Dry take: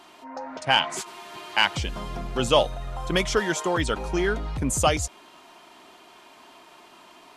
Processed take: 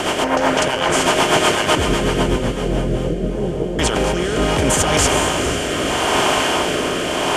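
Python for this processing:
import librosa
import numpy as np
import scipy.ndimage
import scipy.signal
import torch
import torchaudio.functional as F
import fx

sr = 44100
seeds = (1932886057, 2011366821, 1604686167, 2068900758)

y = fx.bin_compress(x, sr, power=0.4)
y = fx.over_compress(y, sr, threshold_db=-22.0, ratio=-1.0)
y = fx.cheby2_lowpass(y, sr, hz=2200.0, order=4, stop_db=70, at=(1.75, 3.79))
y = fx.echo_diffused(y, sr, ms=470, feedback_pct=48, wet_db=-5.0)
y = fx.rotary_switch(y, sr, hz=8.0, then_hz=0.75, switch_at_s=2.4)
y = F.gain(torch.from_numpy(y), 7.0).numpy()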